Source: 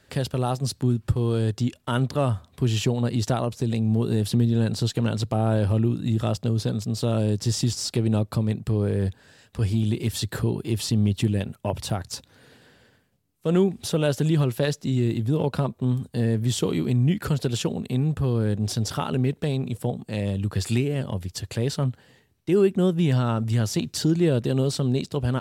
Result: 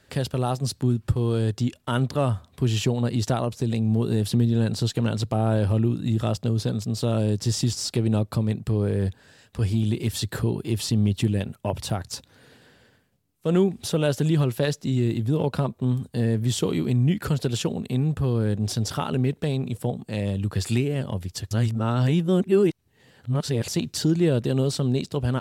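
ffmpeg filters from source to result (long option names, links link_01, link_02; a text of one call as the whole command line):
ffmpeg -i in.wav -filter_complex "[0:a]asplit=3[link_01][link_02][link_03];[link_01]atrim=end=21.512[link_04];[link_02]atrim=start=21.508:end=23.682,asetpts=PTS-STARTPTS,areverse[link_05];[link_03]atrim=start=23.678[link_06];[link_04][link_05]acrossfade=duration=0.004:curve1=hsin:curve2=hsin[link_07];[link_07][link_06]acrossfade=duration=0.004:curve1=hsin:curve2=hsin" out.wav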